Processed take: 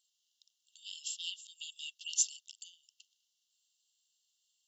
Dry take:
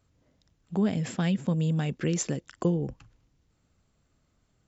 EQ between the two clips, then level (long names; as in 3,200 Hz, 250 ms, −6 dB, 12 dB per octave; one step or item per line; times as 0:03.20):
linear-phase brick-wall high-pass 2,700 Hz
+3.5 dB